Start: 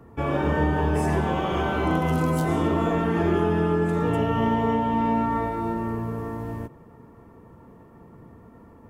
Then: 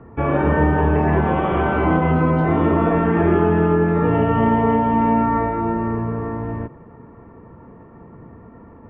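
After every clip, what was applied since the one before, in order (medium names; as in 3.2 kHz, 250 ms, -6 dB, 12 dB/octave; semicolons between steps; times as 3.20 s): low-pass 2.4 kHz 24 dB/octave; trim +6 dB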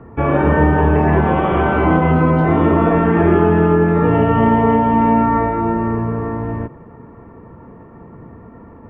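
short-mantissa float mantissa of 8-bit; trim +3.5 dB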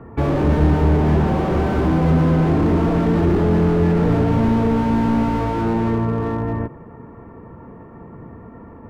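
slew-rate limiter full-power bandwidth 58 Hz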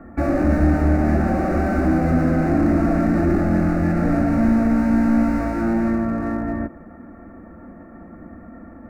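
static phaser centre 650 Hz, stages 8; trim +2.5 dB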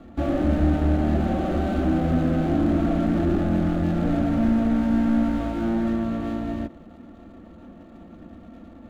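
median filter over 25 samples; trim -3.5 dB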